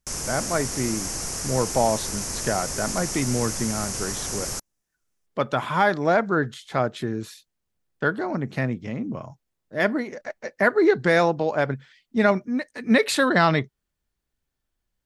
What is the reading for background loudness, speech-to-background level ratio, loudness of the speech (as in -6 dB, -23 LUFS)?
-28.5 LUFS, 4.5 dB, -24.0 LUFS